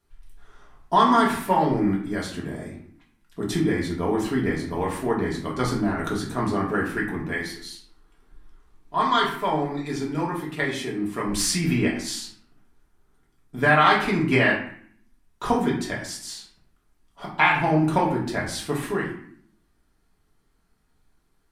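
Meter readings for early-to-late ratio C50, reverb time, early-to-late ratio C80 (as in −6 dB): 5.5 dB, 0.60 s, 8.5 dB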